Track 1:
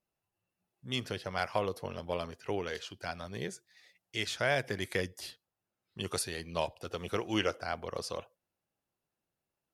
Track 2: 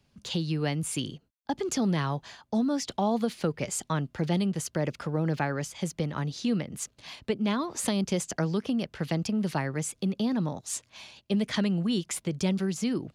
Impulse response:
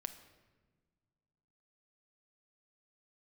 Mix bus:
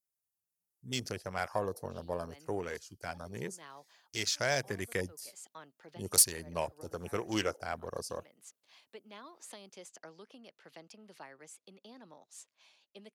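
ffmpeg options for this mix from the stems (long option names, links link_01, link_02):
-filter_complex "[0:a]afwtdn=0.00794,aexciter=amount=4.2:drive=9.4:freq=4800,volume=-1.5dB,asplit=2[link_01][link_02];[1:a]highpass=440,adelay=1650,volume=-17.5dB[link_03];[link_02]apad=whole_len=652281[link_04];[link_03][link_04]sidechaincompress=threshold=-50dB:ratio=8:attack=8.3:release=108[link_05];[link_01][link_05]amix=inputs=2:normalize=0,asoftclip=type=tanh:threshold=-13dB"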